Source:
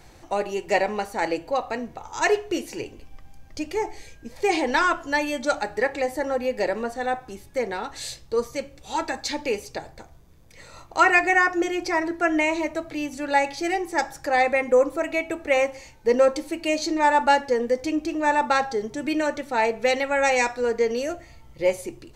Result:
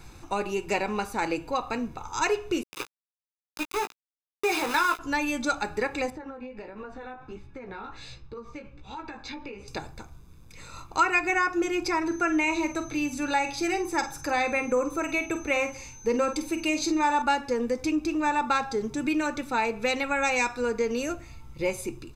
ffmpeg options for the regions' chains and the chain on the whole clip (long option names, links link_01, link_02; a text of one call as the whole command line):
ffmpeg -i in.wav -filter_complex "[0:a]asettb=1/sr,asplit=3[link_01][link_02][link_03];[link_01]atrim=end=2.634[link_04];[link_02]atrim=start=2.63:end=4.99,asetpts=PTS-STARTPTS,afade=type=in:duration=0.004:curve=qsin,afade=type=out:start_time=2.356:duration=0.004:curve=qsin,aeval=exprs='val(0)*gte(abs(val(0)),0.0501)':channel_layout=same,bass=frequency=250:gain=-13,treble=frequency=4000:gain=-2,asplit=2[link_05][link_06];[link_06]adelay=17,volume=-7.5dB[link_07];[link_05][link_07]amix=inputs=2:normalize=0,atrim=end_sample=104076[link_08];[link_03]atrim=start=4.986[link_09];[link_04][link_08]acrossfade=duration=0.004:curve1=hsin:curve2=qsin[link_10];[link_10][link_09]acrossfade=duration=0.004:curve1=qsin:curve2=hsin,asettb=1/sr,asplit=3[link_11][link_12][link_13];[link_11]atrim=end=6.104[link_14];[link_12]atrim=start=6.1:end=9.68,asetpts=PTS-STARTPTS,afade=type=in:duration=0.004:curve=qsin,afade=type=out:start_time=3.576:duration=0.004:curve=qsin,lowpass=2700,flanger=delay=15:depth=4.8:speed=1.4,acompressor=threshold=-34dB:ratio=12:attack=3.2:release=140:knee=1:detection=peak[link_15];[link_13]atrim=start=9.676[link_16];[link_14][link_15]acrossfade=duration=0.004:curve1=hsin:curve2=qsin[link_17];[link_17][link_16]acrossfade=duration=0.004:curve1=qsin:curve2=hsin,asettb=1/sr,asplit=3[link_18][link_19][link_20];[link_18]atrim=end=12.064[link_21];[link_19]atrim=start=12.06:end=17.22,asetpts=PTS-STARTPTS,afade=type=in:duration=0.004:curve=qsin,afade=type=out:start_time=5.156:duration=0.004:curve=qsin,asplit=2[link_22][link_23];[link_23]adelay=48,volume=-11dB[link_24];[link_22][link_24]amix=inputs=2:normalize=0,atrim=end_sample=227556,aeval=exprs='val(0)+0.00316*sin(2*PI*6200*n/s)':channel_layout=same[link_25];[link_20]atrim=start=17.216[link_26];[link_21][link_25]acrossfade=duration=0.004:curve1=hsin:curve2=qsin[link_27];[link_27][link_26]acrossfade=duration=0.004:curve1=qsin:curve2=hsin,aecho=1:1:0.8:0.57,acompressor=threshold=-24dB:ratio=2" out.wav